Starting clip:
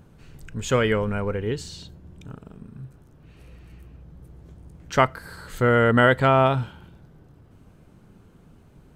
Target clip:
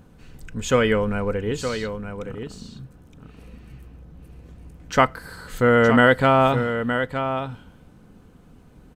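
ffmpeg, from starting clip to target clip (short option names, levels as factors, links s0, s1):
-af "aecho=1:1:4:0.31,aecho=1:1:917:0.376,volume=1.19"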